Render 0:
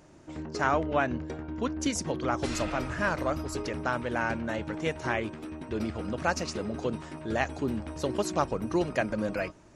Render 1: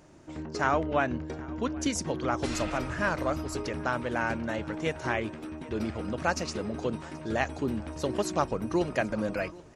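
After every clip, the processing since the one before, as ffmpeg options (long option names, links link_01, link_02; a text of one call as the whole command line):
ffmpeg -i in.wav -af "aecho=1:1:779|1558|2337:0.0794|0.0357|0.0161" out.wav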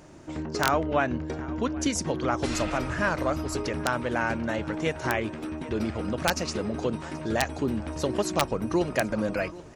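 ffmpeg -i in.wav -filter_complex "[0:a]asplit=2[link_01][link_02];[link_02]acompressor=threshold=-36dB:ratio=4,volume=-0.5dB[link_03];[link_01][link_03]amix=inputs=2:normalize=0,aeval=exprs='(mod(3.55*val(0)+1,2)-1)/3.55':channel_layout=same" out.wav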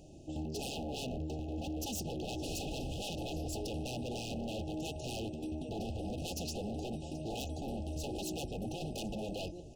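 ffmpeg -i in.wav -af "lowshelf=frequency=90:gain=8.5,aeval=exprs='0.0447*(abs(mod(val(0)/0.0447+3,4)-2)-1)':channel_layout=same,afftfilt=real='re*(1-between(b*sr/4096,860,2500))':imag='im*(1-between(b*sr/4096,860,2500))':win_size=4096:overlap=0.75,volume=-6dB" out.wav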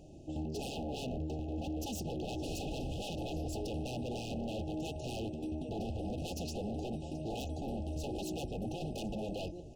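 ffmpeg -i in.wav -af "highshelf=frequency=2800:gain=-6,volume=1dB" out.wav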